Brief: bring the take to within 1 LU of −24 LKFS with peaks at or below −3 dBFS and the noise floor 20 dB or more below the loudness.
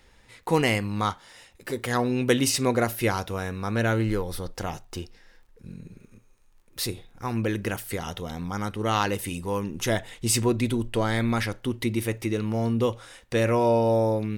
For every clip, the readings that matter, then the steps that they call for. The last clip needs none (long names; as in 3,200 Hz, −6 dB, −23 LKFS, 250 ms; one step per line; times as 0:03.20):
crackle rate 27 per second; integrated loudness −26.5 LKFS; sample peak −8.0 dBFS; target loudness −24.0 LKFS
→ click removal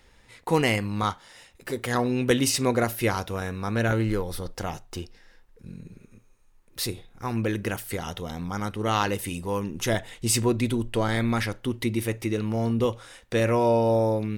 crackle rate 0.83 per second; integrated loudness −26.5 LKFS; sample peak −9.0 dBFS; target loudness −24.0 LKFS
→ level +2.5 dB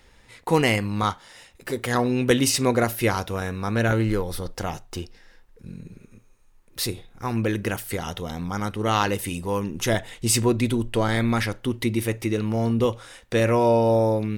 integrated loudness −24.0 LKFS; sample peak −6.5 dBFS; background noise floor −55 dBFS